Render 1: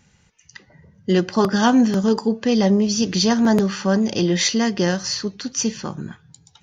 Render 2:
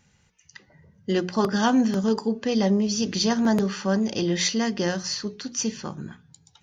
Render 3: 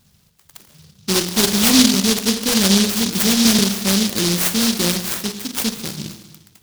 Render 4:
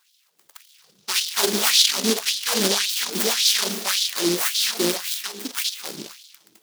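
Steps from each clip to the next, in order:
notches 60/120/180/240/300/360/420 Hz; gain -4.5 dB
on a send at -7 dB: reverb RT60 1.2 s, pre-delay 39 ms; on the sum: noise-modulated delay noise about 4400 Hz, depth 0.4 ms; gain +5.5 dB
LFO high-pass sine 1.8 Hz 290–3700 Hz; gain -4.5 dB

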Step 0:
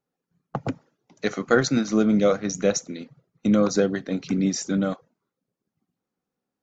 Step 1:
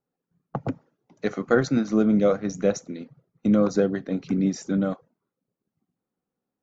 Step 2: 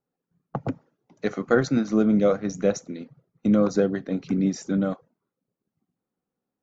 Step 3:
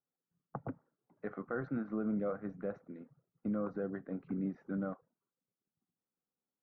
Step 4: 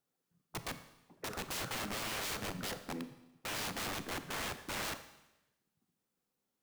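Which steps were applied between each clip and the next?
high shelf 2100 Hz -10.5 dB
nothing audible
limiter -14.5 dBFS, peak gain reduction 7 dB; ladder low-pass 1800 Hz, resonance 35%; gain -6 dB
wrapped overs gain 41.5 dB; Schroeder reverb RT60 0.99 s, combs from 28 ms, DRR 11 dB; gain +7.5 dB

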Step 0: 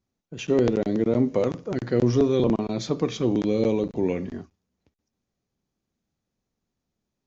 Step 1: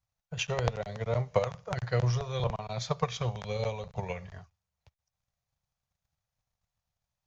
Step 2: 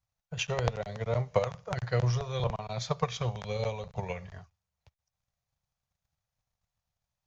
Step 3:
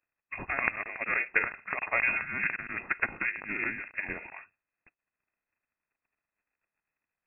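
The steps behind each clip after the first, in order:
Chebyshev band-stop 120–700 Hz, order 2; transient shaper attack +11 dB, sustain -2 dB; gain -2.5 dB
nothing audible
spectral limiter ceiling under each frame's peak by 17 dB; inverted band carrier 2600 Hz

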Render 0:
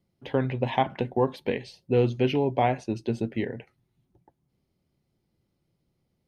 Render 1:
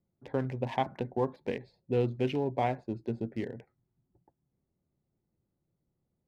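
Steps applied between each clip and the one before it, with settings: Wiener smoothing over 15 samples; gain -6 dB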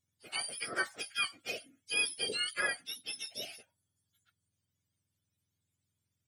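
spectrum mirrored in octaves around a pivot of 1100 Hz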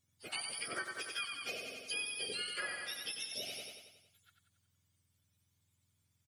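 on a send: feedback echo 92 ms, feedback 55%, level -6 dB; on the sum: compressor 4:1, threshold -44 dBFS, peak gain reduction 14.5 dB; gain +4.5 dB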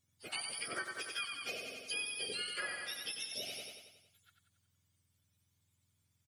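nothing audible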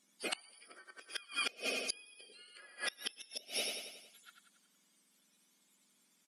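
flipped gate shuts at -32 dBFS, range -28 dB; brick-wall FIR band-pass 180–13000 Hz; gain +10 dB

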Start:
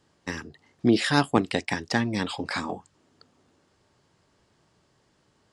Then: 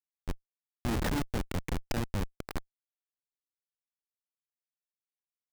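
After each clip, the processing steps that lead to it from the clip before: high shelf 5300 Hz +5 dB; Schmitt trigger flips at -20 dBFS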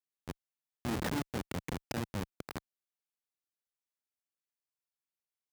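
HPF 100 Hz 12 dB/oct; gain -2.5 dB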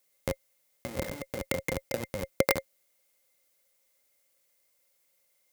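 high shelf 5300 Hz +9.5 dB; negative-ratio compressor -41 dBFS, ratio -0.5; small resonant body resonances 540/2100 Hz, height 18 dB, ringing for 65 ms; gain +8 dB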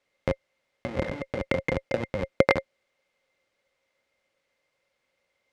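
LPF 2900 Hz 12 dB/oct; gain +5.5 dB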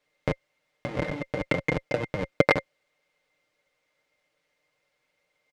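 comb 6.6 ms, depth 57%

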